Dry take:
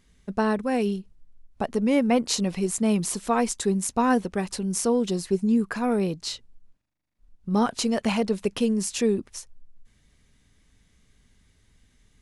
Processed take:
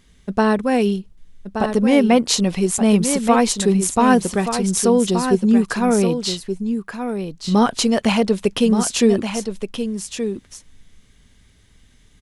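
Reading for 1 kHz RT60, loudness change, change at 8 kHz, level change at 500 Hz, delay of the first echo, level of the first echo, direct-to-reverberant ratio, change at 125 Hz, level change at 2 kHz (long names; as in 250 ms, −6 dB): no reverb audible, +7.0 dB, +7.5 dB, +7.5 dB, 1,175 ms, −8.0 dB, no reverb audible, +8.0 dB, +8.0 dB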